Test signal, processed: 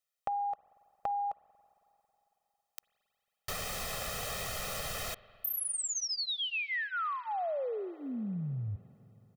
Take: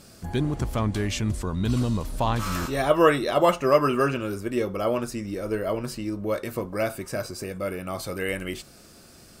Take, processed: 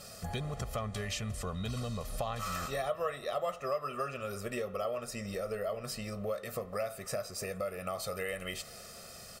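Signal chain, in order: bass shelf 200 Hz -9.5 dB; comb 1.6 ms, depth 96%; compression 4:1, threshold -35 dBFS; spring tank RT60 3.6 s, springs 45/55 ms, chirp 35 ms, DRR 18.5 dB

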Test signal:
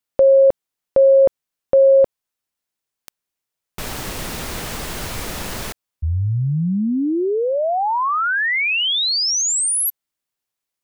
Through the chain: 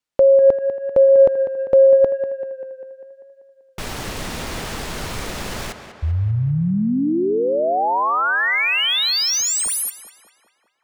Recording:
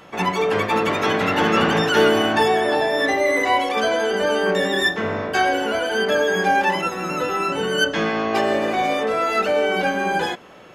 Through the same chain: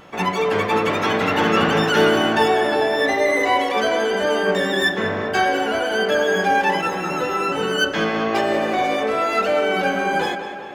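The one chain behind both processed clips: median filter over 3 samples; tape echo 196 ms, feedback 65%, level -9 dB, low-pass 3.7 kHz; vibrato 0.98 Hz 10 cents

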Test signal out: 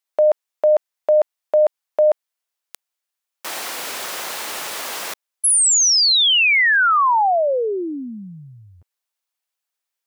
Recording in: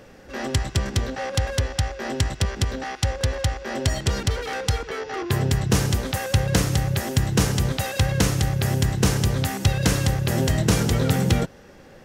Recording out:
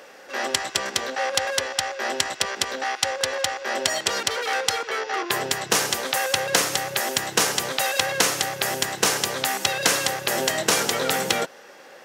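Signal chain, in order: high-pass 580 Hz 12 dB/octave; trim +6 dB

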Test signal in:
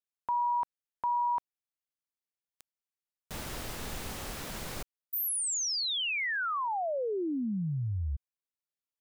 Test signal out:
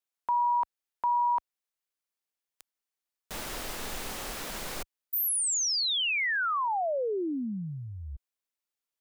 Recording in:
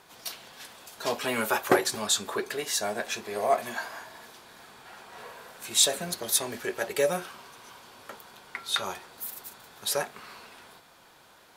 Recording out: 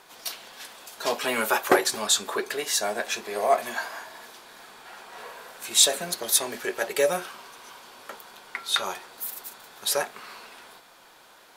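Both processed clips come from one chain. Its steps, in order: peaking EQ 95 Hz -11.5 dB 2 oct; trim +3.5 dB

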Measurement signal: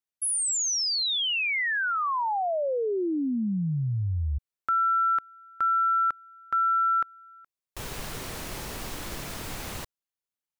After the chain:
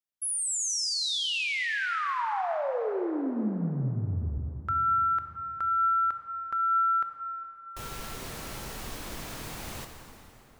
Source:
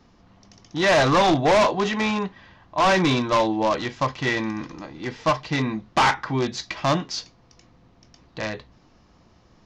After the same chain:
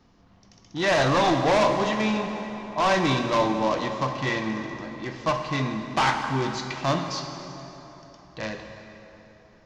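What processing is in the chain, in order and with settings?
plate-style reverb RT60 3.6 s, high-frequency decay 0.7×, DRR 4.5 dB; trim -4 dB

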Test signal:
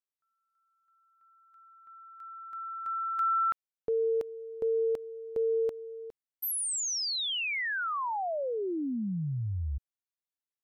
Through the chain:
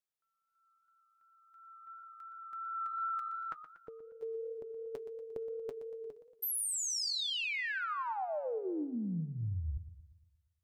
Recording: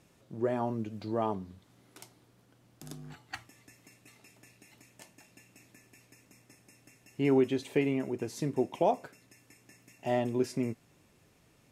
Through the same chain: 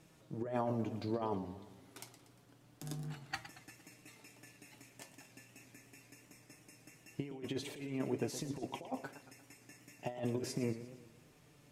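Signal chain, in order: flange 0.28 Hz, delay 6.2 ms, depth 1.3 ms, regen +52%; compressor with a negative ratio -37 dBFS, ratio -0.5; modulated delay 117 ms, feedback 52%, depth 153 cents, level -12.5 dB

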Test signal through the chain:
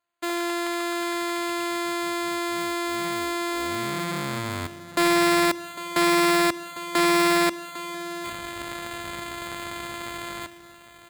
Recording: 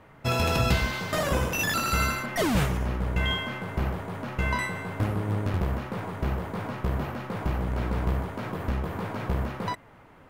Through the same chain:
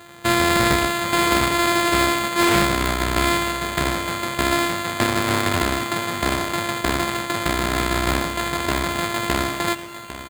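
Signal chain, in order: sorted samples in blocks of 128 samples; high-pass 67 Hz; bass shelf 200 Hz -4 dB; on a send: delay 802 ms -14.5 dB; on the sum: spring tank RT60 2.3 s, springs 32 ms, chirp 35 ms, DRR 17 dB; saturation -17 dBFS; peaking EQ 2.6 kHz +14 dB 2.8 oct; careless resampling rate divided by 8×, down none, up hold; loudspeaker Doppler distortion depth 0.12 ms; trim +6.5 dB

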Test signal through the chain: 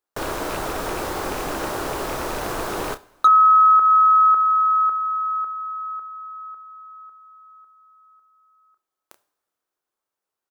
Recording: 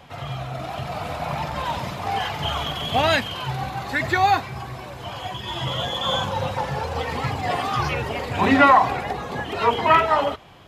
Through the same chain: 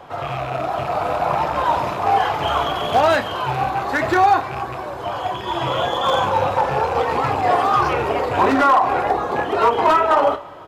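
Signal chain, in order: rattle on loud lows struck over -31 dBFS, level -23 dBFS; two-slope reverb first 0.51 s, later 2.9 s, from -18 dB, DRR 15.5 dB; compression 6:1, threshold -18 dBFS; doubling 30 ms -11 dB; wavefolder -16 dBFS; high-order bell 670 Hz +10.5 dB 2.7 oct; trim -1.5 dB

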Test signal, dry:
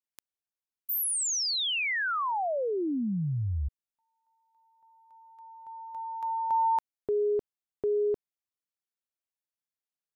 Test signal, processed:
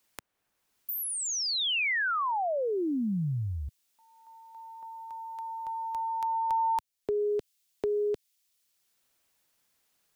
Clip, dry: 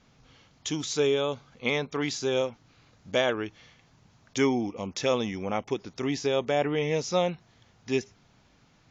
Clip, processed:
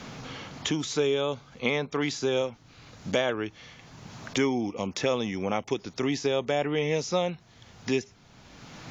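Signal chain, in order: three bands compressed up and down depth 70%

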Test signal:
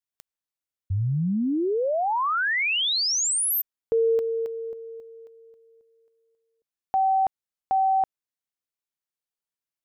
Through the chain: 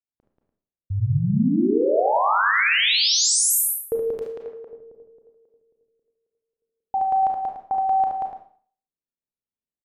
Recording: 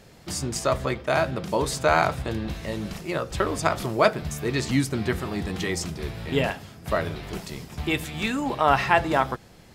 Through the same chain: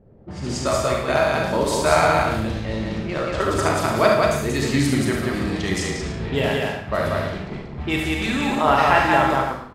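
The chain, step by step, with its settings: loudspeakers at several distances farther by 25 m -6 dB, 63 m -2 dB, 100 m -10 dB; level-controlled noise filter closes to 450 Hz, open at -20 dBFS; Schroeder reverb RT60 0.48 s, combs from 28 ms, DRR 2.5 dB

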